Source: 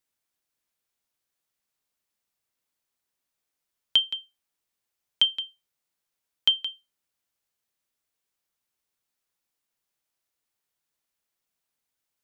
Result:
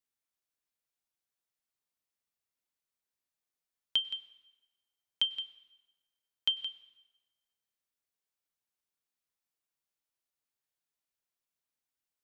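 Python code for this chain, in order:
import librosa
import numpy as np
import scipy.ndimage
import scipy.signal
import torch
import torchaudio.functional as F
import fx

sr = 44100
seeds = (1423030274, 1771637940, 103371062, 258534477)

y = fx.rev_plate(x, sr, seeds[0], rt60_s=1.2, hf_ratio=0.9, predelay_ms=85, drr_db=16.5)
y = y * librosa.db_to_amplitude(-8.5)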